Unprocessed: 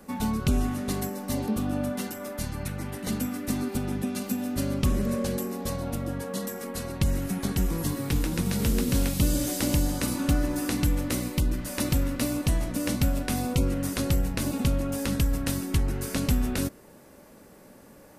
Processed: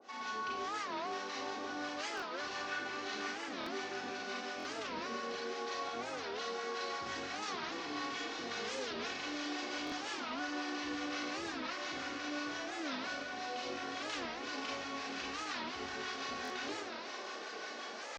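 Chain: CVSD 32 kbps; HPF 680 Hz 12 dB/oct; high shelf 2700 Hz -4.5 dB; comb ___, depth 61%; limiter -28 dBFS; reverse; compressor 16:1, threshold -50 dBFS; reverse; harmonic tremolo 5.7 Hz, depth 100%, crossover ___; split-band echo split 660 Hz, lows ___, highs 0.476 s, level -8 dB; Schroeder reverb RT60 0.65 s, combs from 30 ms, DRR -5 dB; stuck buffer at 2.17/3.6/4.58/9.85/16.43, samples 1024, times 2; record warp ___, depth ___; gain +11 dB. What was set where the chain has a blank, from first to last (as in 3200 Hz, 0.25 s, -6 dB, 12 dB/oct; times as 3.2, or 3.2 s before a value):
2.7 ms, 760 Hz, 0.121 s, 45 rpm, 250 cents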